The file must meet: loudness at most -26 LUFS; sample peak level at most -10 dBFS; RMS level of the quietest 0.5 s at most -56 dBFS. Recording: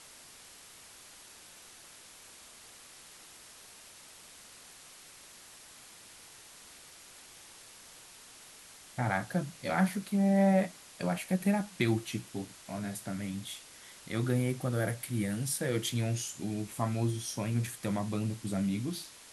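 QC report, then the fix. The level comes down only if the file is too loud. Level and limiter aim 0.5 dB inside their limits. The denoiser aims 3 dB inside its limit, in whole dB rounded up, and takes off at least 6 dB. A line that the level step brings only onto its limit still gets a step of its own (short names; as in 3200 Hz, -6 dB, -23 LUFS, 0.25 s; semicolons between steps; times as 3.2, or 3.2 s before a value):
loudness -32.5 LUFS: OK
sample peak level -13.5 dBFS: OK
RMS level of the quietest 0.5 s -53 dBFS: fail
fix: denoiser 6 dB, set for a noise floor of -53 dBFS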